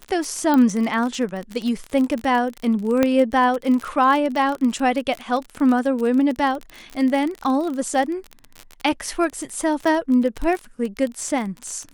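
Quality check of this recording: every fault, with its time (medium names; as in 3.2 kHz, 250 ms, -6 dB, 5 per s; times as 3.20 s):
crackle 34 per s -24 dBFS
0.54 s: pop -8 dBFS
3.03 s: pop -5 dBFS
9.85 s: dropout 4.9 ms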